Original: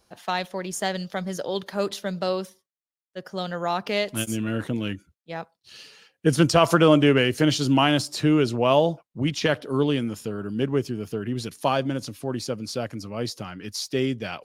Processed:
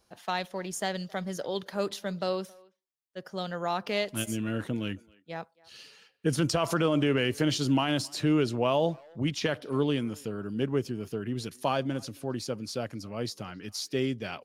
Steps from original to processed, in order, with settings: limiter -11.5 dBFS, peak gain reduction 7.5 dB; speakerphone echo 0.27 s, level -24 dB; gain -4.5 dB

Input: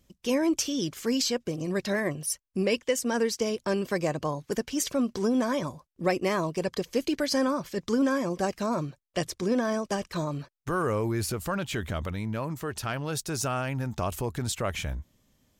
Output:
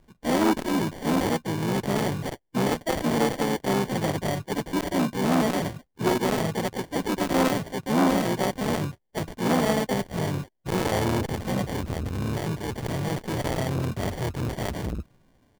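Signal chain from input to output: harmoniser -7 st -6 dB, -5 st -9 dB, +4 st -6 dB; sample-and-hold 34×; harmonic-percussive split percussive -9 dB; core saturation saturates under 770 Hz; gain +6.5 dB

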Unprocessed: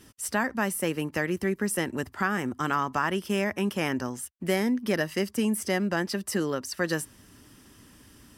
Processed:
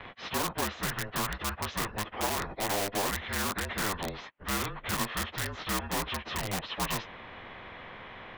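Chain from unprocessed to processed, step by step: pitch shift by moving bins -6 st; mistuned SSB -200 Hz 320–3000 Hz; in parallel at -11 dB: wrapped overs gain 30 dB; on the sum: spectral compressor 2:1

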